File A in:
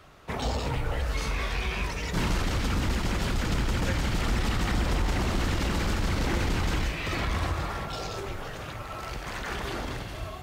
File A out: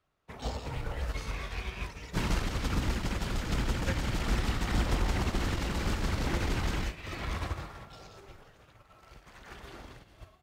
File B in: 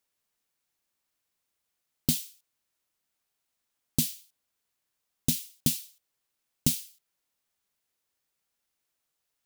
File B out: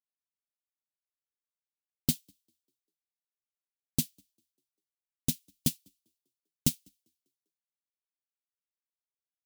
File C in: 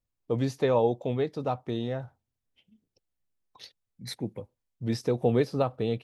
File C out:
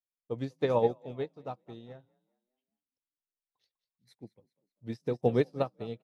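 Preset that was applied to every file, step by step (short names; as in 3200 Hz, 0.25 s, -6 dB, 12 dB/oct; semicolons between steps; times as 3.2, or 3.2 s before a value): frequency-shifting echo 0.198 s, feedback 45%, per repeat +40 Hz, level -14 dB; upward expander 2.5:1, over -40 dBFS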